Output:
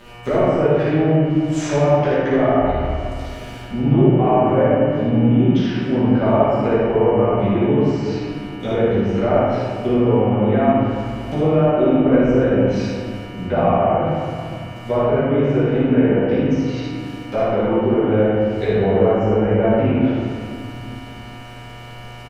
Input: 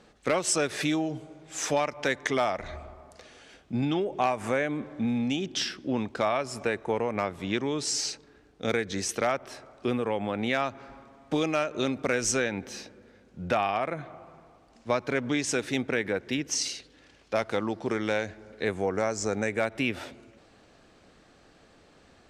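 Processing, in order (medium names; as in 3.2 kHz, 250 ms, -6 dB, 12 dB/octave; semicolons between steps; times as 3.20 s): bit crusher 9-bit; bass shelf 140 Hz +11.5 dB; low-pass that closes with the level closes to 960 Hz, closed at -24.5 dBFS; mains buzz 120 Hz, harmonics 25, -48 dBFS -3 dB/octave; early reflections 57 ms -4.5 dB, 76 ms -6 dB; reverberation RT60 2.0 s, pre-delay 5 ms, DRR -9.5 dB; trim -1 dB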